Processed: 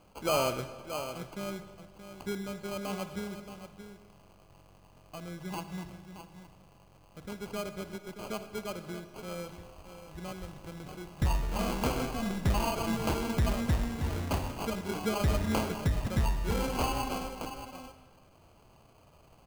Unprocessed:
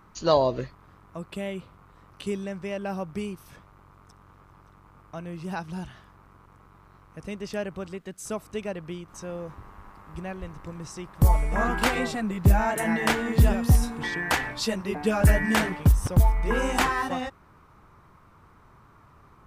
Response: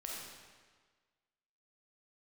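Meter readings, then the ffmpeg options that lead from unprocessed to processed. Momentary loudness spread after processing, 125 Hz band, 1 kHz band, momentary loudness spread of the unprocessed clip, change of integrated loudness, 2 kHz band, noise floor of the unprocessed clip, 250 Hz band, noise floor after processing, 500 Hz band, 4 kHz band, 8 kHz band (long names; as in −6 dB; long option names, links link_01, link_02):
18 LU, −8.5 dB, −6.5 dB, 17 LU, −8.0 dB, −11.5 dB, −55 dBFS, −6.0 dB, −59 dBFS, −6.5 dB, −4.5 dB, −5.0 dB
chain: -filter_complex "[0:a]bandreject=frequency=53.94:width_type=h:width=4,bandreject=frequency=107.88:width_type=h:width=4,bandreject=frequency=161.82:width_type=h:width=4,asplit=2[link_01][link_02];[link_02]aecho=0:1:626:0.282[link_03];[link_01][link_03]amix=inputs=2:normalize=0,acrusher=samples=24:mix=1:aa=0.000001,asoftclip=type=tanh:threshold=-15.5dB,asplit=2[link_04][link_05];[1:a]atrim=start_sample=2205[link_06];[link_05][link_06]afir=irnorm=-1:irlink=0,volume=-6.5dB[link_07];[link_04][link_07]amix=inputs=2:normalize=0,volume=-7.5dB"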